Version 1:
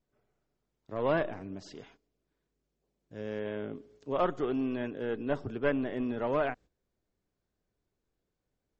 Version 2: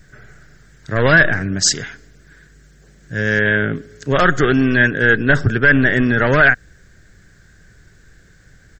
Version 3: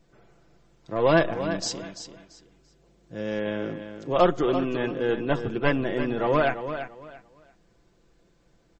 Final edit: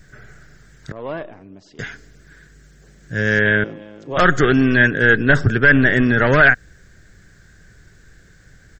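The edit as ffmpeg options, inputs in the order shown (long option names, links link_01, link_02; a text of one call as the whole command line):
ffmpeg -i take0.wav -i take1.wav -i take2.wav -filter_complex "[1:a]asplit=3[link_01][link_02][link_03];[link_01]atrim=end=0.922[link_04];[0:a]atrim=start=0.918:end=1.792[link_05];[link_02]atrim=start=1.788:end=3.642[link_06];[2:a]atrim=start=3.638:end=4.172[link_07];[link_03]atrim=start=4.168[link_08];[link_04][link_05]acrossfade=duration=0.004:curve1=hsin:curve2=hsin[link_09];[link_09][link_06]acrossfade=duration=0.004:curve1=hsin:curve2=hsin[link_10];[link_10][link_07]acrossfade=duration=0.004:curve1=hsin:curve2=hsin[link_11];[link_11][link_08]acrossfade=duration=0.004:curve1=hsin:curve2=hsin" out.wav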